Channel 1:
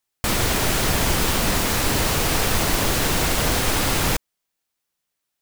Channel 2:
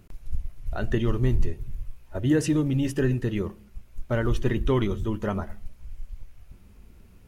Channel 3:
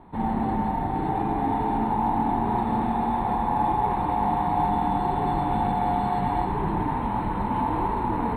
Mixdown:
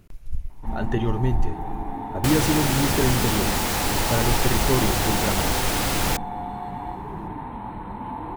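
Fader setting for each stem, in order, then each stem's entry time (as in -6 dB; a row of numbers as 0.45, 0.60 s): -3.0, +0.5, -7.5 dB; 2.00, 0.00, 0.50 s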